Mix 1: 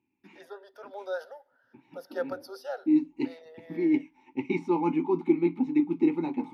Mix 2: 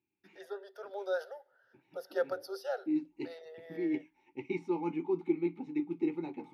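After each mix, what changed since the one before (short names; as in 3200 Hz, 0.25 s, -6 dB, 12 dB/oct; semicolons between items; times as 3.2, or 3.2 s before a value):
second voice -7.0 dB; master: add thirty-one-band EQ 250 Hz -11 dB, 400 Hz +4 dB, 1000 Hz -7 dB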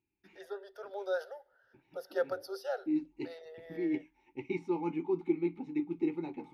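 master: remove HPF 120 Hz 12 dB/oct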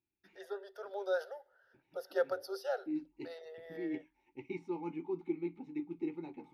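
second voice -6.0 dB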